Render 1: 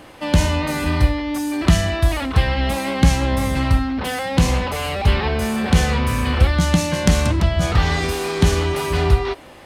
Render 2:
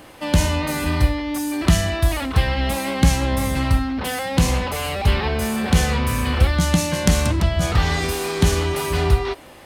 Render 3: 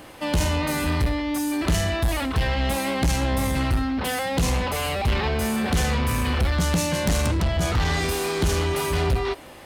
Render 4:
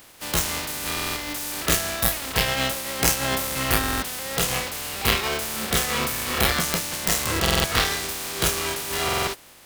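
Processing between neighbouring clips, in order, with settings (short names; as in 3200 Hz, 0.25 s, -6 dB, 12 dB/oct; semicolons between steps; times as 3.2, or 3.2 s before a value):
high shelf 8800 Hz +8.5 dB; gain -1.5 dB
soft clip -16.5 dBFS, distortion -9 dB
spectral contrast lowered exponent 0.3; spectral noise reduction 9 dB; stuck buffer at 0.93/3.79/7.41/9.04, samples 2048, times 4; gain +3.5 dB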